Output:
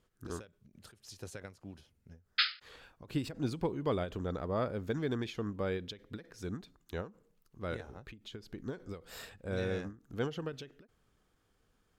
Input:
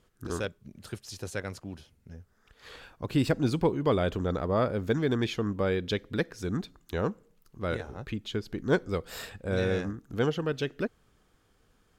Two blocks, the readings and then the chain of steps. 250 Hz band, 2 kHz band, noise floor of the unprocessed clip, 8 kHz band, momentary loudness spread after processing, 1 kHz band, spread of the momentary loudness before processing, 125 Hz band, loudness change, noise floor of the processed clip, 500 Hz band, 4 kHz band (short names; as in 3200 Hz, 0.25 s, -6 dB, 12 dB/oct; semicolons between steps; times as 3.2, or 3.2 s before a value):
-8.5 dB, -6.0 dB, -68 dBFS, -7.5 dB, 15 LU, -7.5 dB, 16 LU, -8.5 dB, -7.5 dB, -75 dBFS, -8.5 dB, -0.5 dB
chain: painted sound noise, 2.38–2.6, 1200–5200 Hz -18 dBFS; ending taper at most 190 dB/s; gain -7 dB